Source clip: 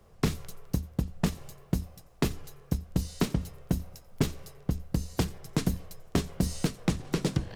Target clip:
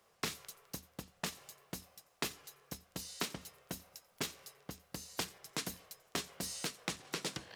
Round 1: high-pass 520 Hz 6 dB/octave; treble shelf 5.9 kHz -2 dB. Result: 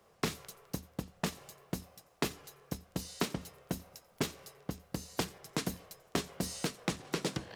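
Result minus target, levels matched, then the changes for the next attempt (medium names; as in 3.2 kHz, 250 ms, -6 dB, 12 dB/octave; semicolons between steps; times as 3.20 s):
500 Hz band +4.0 dB
change: high-pass 1.6 kHz 6 dB/octave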